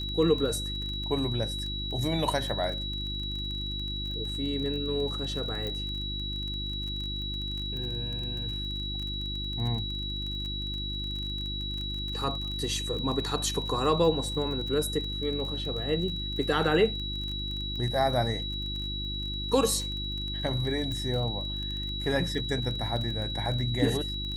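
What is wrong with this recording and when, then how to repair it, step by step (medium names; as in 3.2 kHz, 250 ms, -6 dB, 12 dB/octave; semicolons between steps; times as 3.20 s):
crackle 27 per s -34 dBFS
hum 50 Hz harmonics 7 -36 dBFS
whine 3.9 kHz -34 dBFS
5.67 s: pop -21 dBFS
20.92 s: pop -23 dBFS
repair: de-click; de-hum 50 Hz, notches 7; band-stop 3.9 kHz, Q 30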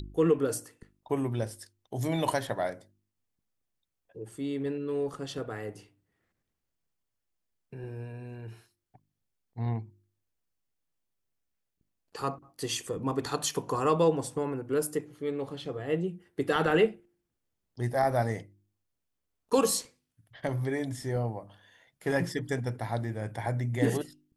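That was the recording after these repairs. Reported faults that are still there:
nothing left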